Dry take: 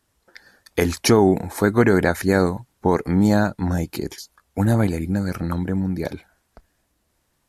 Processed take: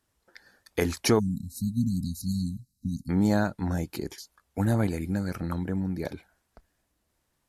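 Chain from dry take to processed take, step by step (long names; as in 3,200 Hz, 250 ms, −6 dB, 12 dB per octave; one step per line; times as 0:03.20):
0:01.19–0:03.09: time-frequency box erased 270–3,800 Hz
0:04.63–0:05.21: one half of a high-frequency compander encoder only
level −6.5 dB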